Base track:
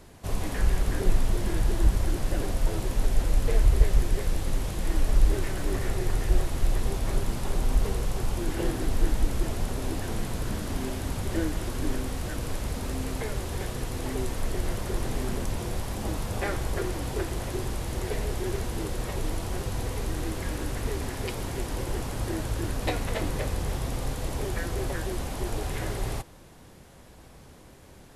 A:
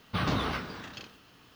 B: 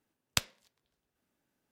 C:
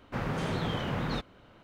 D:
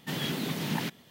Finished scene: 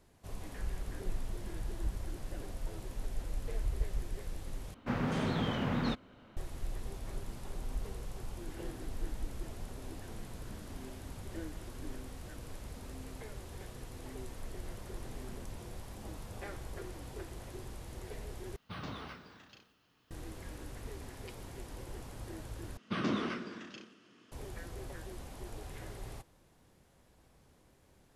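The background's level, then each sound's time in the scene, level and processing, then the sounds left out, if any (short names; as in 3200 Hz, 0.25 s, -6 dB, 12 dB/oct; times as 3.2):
base track -14.5 dB
4.74 replace with C -2.5 dB + bell 240 Hz +8 dB 0.34 oct
18.56 replace with A -14 dB
22.77 replace with A -5.5 dB + speaker cabinet 170–8800 Hz, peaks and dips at 220 Hz +10 dB, 350 Hz +9 dB, 830 Hz -8 dB, 4100 Hz -6 dB
not used: B, D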